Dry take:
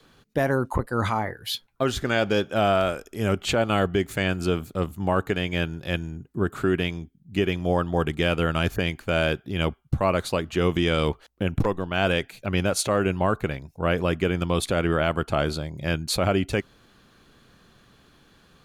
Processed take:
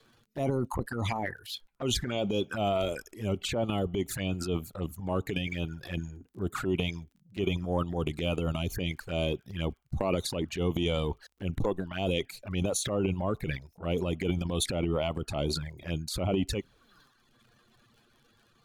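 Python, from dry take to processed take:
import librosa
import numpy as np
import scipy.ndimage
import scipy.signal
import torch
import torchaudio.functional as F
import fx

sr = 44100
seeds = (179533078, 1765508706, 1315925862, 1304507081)

y = fx.env_flanger(x, sr, rest_ms=9.3, full_db=-20.5)
y = fx.dereverb_blind(y, sr, rt60_s=1.0)
y = fx.transient(y, sr, attack_db=-7, sustain_db=10)
y = fx.dmg_crackle(y, sr, seeds[0], per_s=26.0, level_db=-48.0)
y = y * librosa.db_to_amplitude(-3.5)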